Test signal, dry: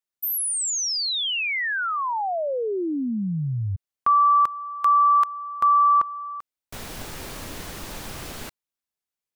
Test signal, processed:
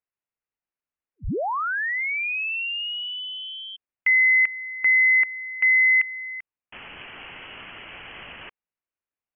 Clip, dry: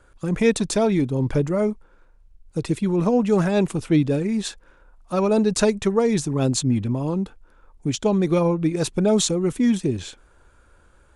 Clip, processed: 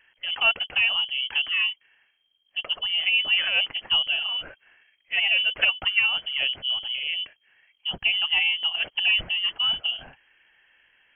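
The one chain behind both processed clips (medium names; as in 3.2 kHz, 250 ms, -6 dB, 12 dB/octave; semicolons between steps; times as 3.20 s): high-pass 400 Hz 6 dB/octave; frequency inversion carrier 3.2 kHz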